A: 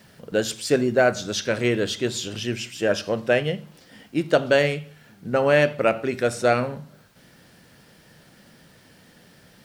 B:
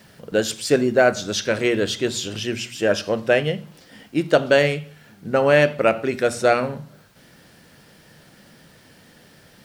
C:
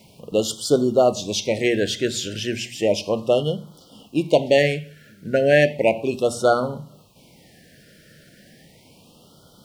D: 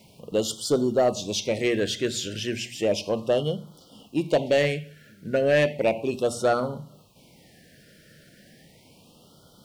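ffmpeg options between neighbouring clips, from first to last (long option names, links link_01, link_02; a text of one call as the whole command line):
ffmpeg -i in.wav -af "bandreject=frequency=60:width_type=h:width=6,bandreject=frequency=120:width_type=h:width=6,bandreject=frequency=180:width_type=h:width=6,bandreject=frequency=240:width_type=h:width=6,volume=2.5dB" out.wav
ffmpeg -i in.wav -af "afftfilt=real='re*(1-between(b*sr/1024,940*pow(2100/940,0.5+0.5*sin(2*PI*0.34*pts/sr))/1.41,940*pow(2100/940,0.5+0.5*sin(2*PI*0.34*pts/sr))*1.41))':imag='im*(1-between(b*sr/1024,940*pow(2100/940,0.5+0.5*sin(2*PI*0.34*pts/sr))/1.41,940*pow(2100/940,0.5+0.5*sin(2*PI*0.34*pts/sr))*1.41))':win_size=1024:overlap=0.75" out.wav
ffmpeg -i in.wav -af "asoftclip=type=tanh:threshold=-9.5dB,volume=-3dB" out.wav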